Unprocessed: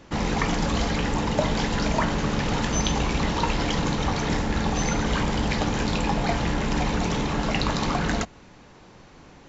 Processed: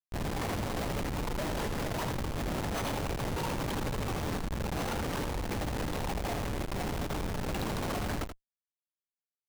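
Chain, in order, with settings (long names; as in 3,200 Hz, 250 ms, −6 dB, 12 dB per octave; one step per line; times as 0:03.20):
high-pass filter 510 Hz 12 dB per octave
comparator with hysteresis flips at −25 dBFS
on a send: single-tap delay 80 ms −8.5 dB
on the sum: level −3 dB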